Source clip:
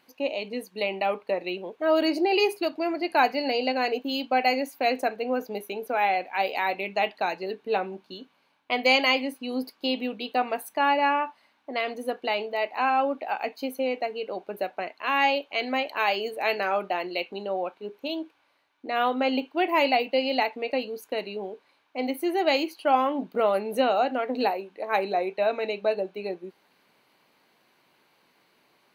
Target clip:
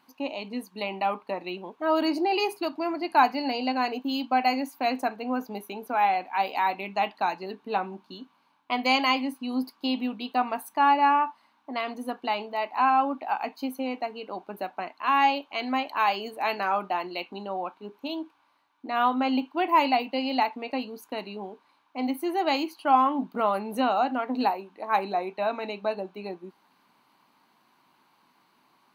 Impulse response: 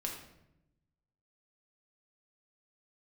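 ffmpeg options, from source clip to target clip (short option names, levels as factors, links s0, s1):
-af "equalizer=f=250:t=o:w=1:g=6,equalizer=f=500:t=o:w=1:g=-9,equalizer=f=1000:t=o:w=1:g=10,equalizer=f=2000:t=o:w=1:g=-4,volume=0.794"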